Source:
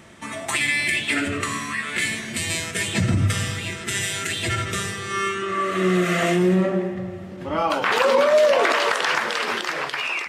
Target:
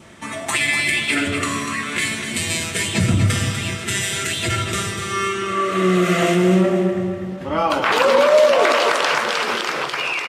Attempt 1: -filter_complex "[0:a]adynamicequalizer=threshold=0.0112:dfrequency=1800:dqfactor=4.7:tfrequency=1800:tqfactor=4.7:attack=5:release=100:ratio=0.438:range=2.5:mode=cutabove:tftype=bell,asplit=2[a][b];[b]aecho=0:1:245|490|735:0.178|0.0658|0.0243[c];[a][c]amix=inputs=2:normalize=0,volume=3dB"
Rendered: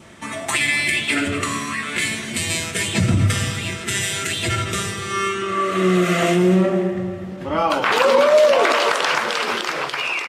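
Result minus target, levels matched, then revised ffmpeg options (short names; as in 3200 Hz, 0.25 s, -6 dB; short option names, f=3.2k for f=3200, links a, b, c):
echo-to-direct -7 dB
-filter_complex "[0:a]adynamicequalizer=threshold=0.0112:dfrequency=1800:dqfactor=4.7:tfrequency=1800:tqfactor=4.7:attack=5:release=100:ratio=0.438:range=2.5:mode=cutabove:tftype=bell,asplit=2[a][b];[b]aecho=0:1:245|490|735|980:0.398|0.147|0.0545|0.0202[c];[a][c]amix=inputs=2:normalize=0,volume=3dB"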